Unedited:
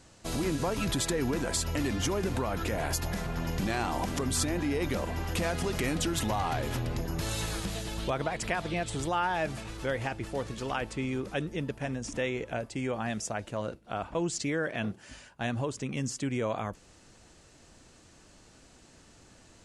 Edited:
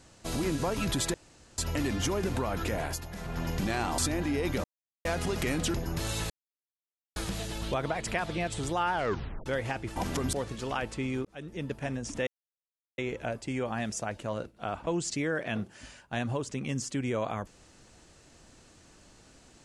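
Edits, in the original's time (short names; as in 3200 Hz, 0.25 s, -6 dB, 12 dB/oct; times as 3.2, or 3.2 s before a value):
1.14–1.58 room tone
2.76–3.41 dip -9.5 dB, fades 0.30 s
3.98–4.35 move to 10.32
5.01–5.42 mute
6.11–6.96 cut
7.52 insert silence 0.86 s
9.29 tape stop 0.53 s
11.24–11.72 fade in
12.26 insert silence 0.71 s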